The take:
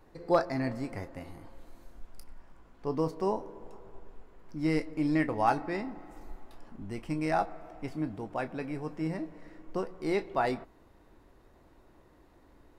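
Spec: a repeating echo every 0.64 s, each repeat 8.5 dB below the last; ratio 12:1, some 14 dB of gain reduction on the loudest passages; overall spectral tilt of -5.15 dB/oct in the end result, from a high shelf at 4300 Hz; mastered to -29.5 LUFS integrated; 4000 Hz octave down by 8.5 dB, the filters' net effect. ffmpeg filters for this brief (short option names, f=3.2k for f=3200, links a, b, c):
-af "equalizer=f=4k:t=o:g=-6.5,highshelf=f=4.3k:g=-8,acompressor=threshold=-34dB:ratio=12,aecho=1:1:640|1280|1920|2560:0.376|0.143|0.0543|0.0206,volume=12dB"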